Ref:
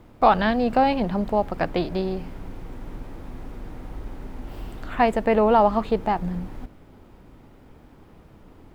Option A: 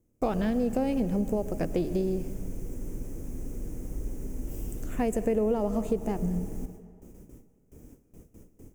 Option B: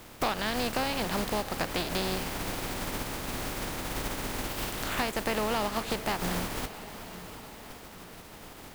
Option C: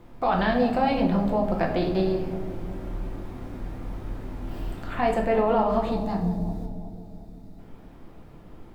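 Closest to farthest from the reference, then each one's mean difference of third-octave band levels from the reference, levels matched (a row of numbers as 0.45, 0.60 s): C, A, B; 4.0, 7.5, 17.0 dB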